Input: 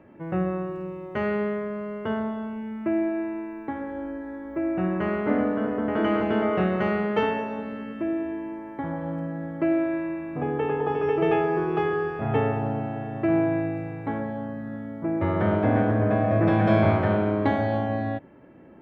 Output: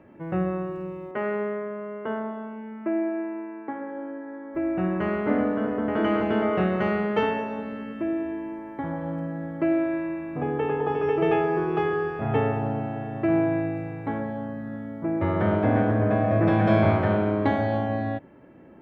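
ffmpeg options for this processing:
-filter_complex "[0:a]asettb=1/sr,asplit=3[a][b][c];[a]atrim=end=1.114[d];[b]atrim=start=1.11:end=4.55,asetpts=PTS-STARTPTS,afade=t=in:d=0.004:c=qsin,afade=t=out:st=3.436:d=0.004:c=qsin,highpass=260,lowpass=2.2k[e];[c]atrim=start=4.546[f];[d][e]acrossfade=d=0.004:c1=hsin:c2=qsin[g];[g][f]acrossfade=d=0.004:c1=qsin:c2=hsin"

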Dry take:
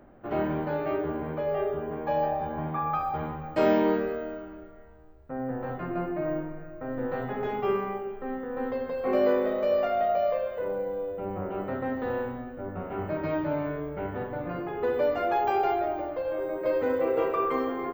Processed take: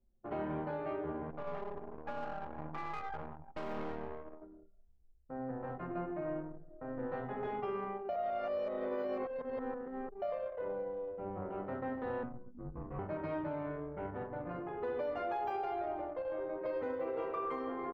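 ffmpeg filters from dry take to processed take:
-filter_complex "[0:a]asettb=1/sr,asplit=3[a][b][c];[a]atrim=end=1.304[d];[b]atrim=start=1.3:end=4.42,asetpts=PTS-STARTPTS,afade=t=in:d=0.004:c=qsin,afade=t=out:st=3.116:d=0.004:c=qsin,aeval=exprs='max(val(0),0)':c=same[e];[c]atrim=start=4.416[f];[d][e]acrossfade=d=0.004:c1=hsin:c2=qsin[g];[g][f]acrossfade=d=0.004:c1=qsin:c2=hsin,asettb=1/sr,asplit=3[h][i][j];[h]atrim=end=12.234[k];[i]atrim=start=12.23:end=12.99,asetpts=PTS-STARTPTS,afade=t=in:d=0.004:c=qsin,afade=t=out:st=0.756:d=0.004:c=qsin,afreqshift=-250[l];[j]atrim=start=12.986[m];[k][l]acrossfade=d=0.004:c1=hsin:c2=qsin[n];[n][m]acrossfade=d=0.004:c1=qsin:c2=hsin,asplit=3[o][p][q];[o]atrim=end=8.092[r];[p]atrim=start=8.088:end=10.222,asetpts=PTS-STARTPTS,areverse[s];[q]atrim=start=10.218[t];[r][s]acrossfade=d=0.004:c1=hsin:c2=hsin[u];[u][t]acrossfade=d=0.004:c1=hsin:c2=hsin,anlmdn=1.58,equalizer=f=950:t=o:w=0.77:g=3,alimiter=limit=-20.5dB:level=0:latency=1:release=131,volume=-8.5dB"

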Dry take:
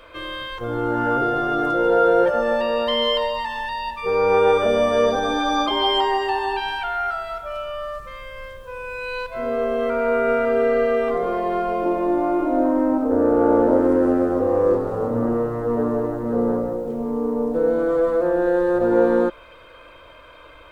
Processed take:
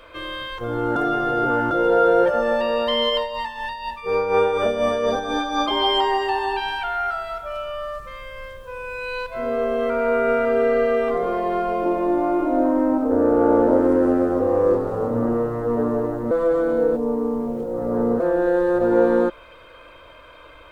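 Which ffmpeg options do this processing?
-filter_complex "[0:a]asplit=3[a][b][c];[a]afade=t=out:st=3.09:d=0.02[d];[b]tremolo=f=4.1:d=0.55,afade=t=in:st=3.09:d=0.02,afade=t=out:st=5.67:d=0.02[e];[c]afade=t=in:st=5.67:d=0.02[f];[d][e][f]amix=inputs=3:normalize=0,asplit=5[g][h][i][j][k];[g]atrim=end=0.962[l];[h]atrim=start=0.958:end=1.712,asetpts=PTS-STARTPTS,areverse[m];[i]atrim=start=1.708:end=16.312[n];[j]atrim=start=16.308:end=18.202,asetpts=PTS-STARTPTS,areverse[o];[k]atrim=start=18.198[p];[l][m]acrossfade=d=0.004:c1=hsin:c2=hsin[q];[q][n]acrossfade=d=0.004:c1=hsin:c2=hsin[r];[r][o]acrossfade=d=0.004:c1=hsin:c2=hsin[s];[s][p]acrossfade=d=0.004:c1=hsin:c2=hsin"

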